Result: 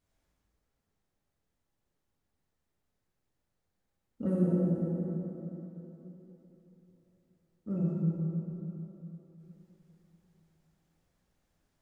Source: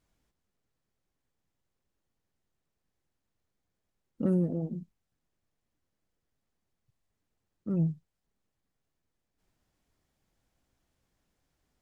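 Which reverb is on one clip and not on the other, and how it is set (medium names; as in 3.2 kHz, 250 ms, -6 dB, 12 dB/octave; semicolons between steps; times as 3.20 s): plate-style reverb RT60 3.7 s, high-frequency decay 0.55×, DRR -6.5 dB; trim -6 dB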